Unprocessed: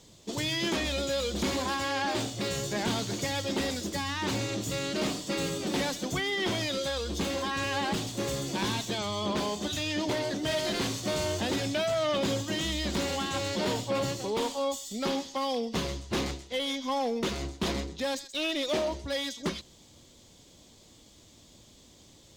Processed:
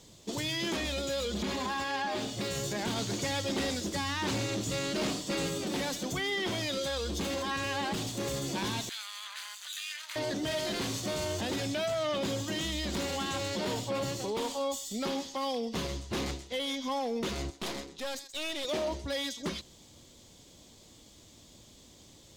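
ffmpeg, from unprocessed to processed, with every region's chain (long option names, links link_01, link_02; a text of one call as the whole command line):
ffmpeg -i in.wav -filter_complex "[0:a]asettb=1/sr,asplit=3[link_01][link_02][link_03];[link_01]atrim=end=1.254[link_04];[link_02]atrim=start=1.25:end=2.37,asetpts=PTS-STARTPTS,afade=type=in:duration=0.004:curve=qsin,afade=type=out:start_time=1.116:duration=0.004:curve=qsin,acrossover=split=4900[link_05][link_06];[link_06]acompressor=threshold=-47dB:ratio=4:attack=1:release=60[link_07];[link_05][link_07]amix=inputs=2:normalize=0,aecho=1:1:4.8:0.52,atrim=end_sample=49392[link_08];[link_03]atrim=start=2.366[link_09];[link_04][link_08]acrossfade=duration=0.004:curve1=hsin:curve2=qsin[link_10];[link_10][link_09]acrossfade=duration=0.004:curve1=qsin:curve2=hsin,asettb=1/sr,asplit=3[link_11][link_12][link_13];[link_11]atrim=end=2.944[link_14];[link_12]atrim=start=2.94:end=5.48,asetpts=PTS-STARTPTS,afade=type=in:duration=0.004:curve=qsin,afade=type=out:start_time=2.536:duration=0.004:curve=qsin,asoftclip=type=hard:threshold=-27.5dB,acrossover=split=9600[link_15][link_16];[link_16]acompressor=threshold=-54dB:ratio=4:attack=1:release=60[link_17];[link_15][link_17]amix=inputs=2:normalize=0[link_18];[link_13]atrim=start=5.476[link_19];[link_14][link_18]acrossfade=duration=0.004:curve1=hsin:curve2=qsin[link_20];[link_20][link_19]acrossfade=duration=0.004:curve1=qsin:curve2=hsin,asettb=1/sr,asplit=3[link_21][link_22][link_23];[link_21]atrim=end=8.894[link_24];[link_22]atrim=start=8.89:end=10.16,asetpts=PTS-STARTPTS,afade=type=in:duration=0.004:curve=qsin,afade=type=out:start_time=1.266:duration=0.004:curve=qsin,aeval=exprs='max(val(0),0)':channel_layout=same,highpass=frequency=1400:width=0.5412,highpass=frequency=1400:width=1.3066,bandreject=frequency=5400:width=6.7[link_25];[link_23]atrim=start=10.156[link_26];[link_24][link_25]acrossfade=duration=0.004:curve1=hsin:curve2=qsin[link_27];[link_27][link_26]acrossfade=duration=0.004:curve1=qsin:curve2=hsin,asettb=1/sr,asplit=3[link_28][link_29][link_30];[link_28]atrim=end=17.504[link_31];[link_29]atrim=start=17.5:end=18.65,asetpts=PTS-STARTPTS,afade=type=in:duration=0.004:curve=qsin,afade=type=out:start_time=1.146:duration=0.004:curve=qsin,highpass=frequency=150:poles=1,lowshelf=frequency=200:gain=-7.5,aeval=exprs='(tanh(35.5*val(0)+0.65)-tanh(0.65))/35.5':channel_layout=same[link_32];[link_30]atrim=start=18.646[link_33];[link_31][link_32]acrossfade=duration=0.004:curve1=hsin:curve2=qsin[link_34];[link_34][link_33]acrossfade=duration=0.004:curve1=qsin:curve2=hsin,equalizer=frequency=12000:width_type=o:width=0.77:gain=2.5,alimiter=level_in=1.5dB:limit=-24dB:level=0:latency=1,volume=-1.5dB" out.wav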